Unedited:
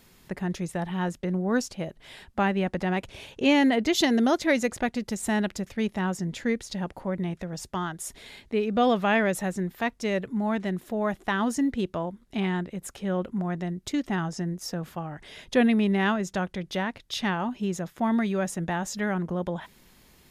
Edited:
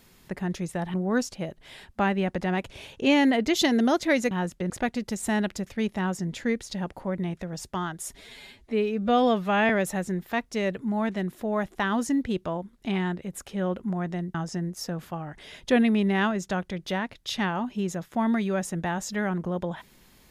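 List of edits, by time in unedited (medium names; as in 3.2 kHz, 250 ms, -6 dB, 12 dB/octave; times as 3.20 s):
0.94–1.33 s: move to 4.70 s
8.15–9.18 s: stretch 1.5×
13.83–14.19 s: delete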